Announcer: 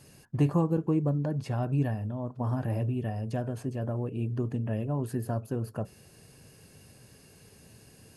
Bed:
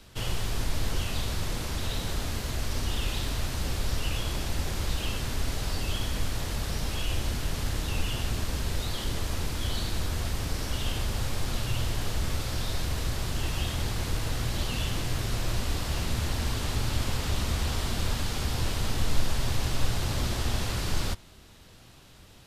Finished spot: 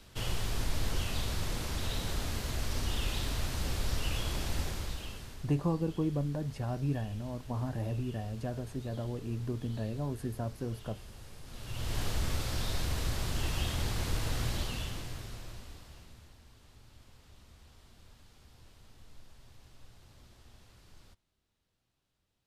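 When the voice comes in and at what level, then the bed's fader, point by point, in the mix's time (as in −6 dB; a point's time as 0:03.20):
5.10 s, −5.0 dB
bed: 0:04.60 −3.5 dB
0:05.57 −20 dB
0:11.43 −20 dB
0:11.97 −3 dB
0:14.48 −3 dB
0:16.43 −29 dB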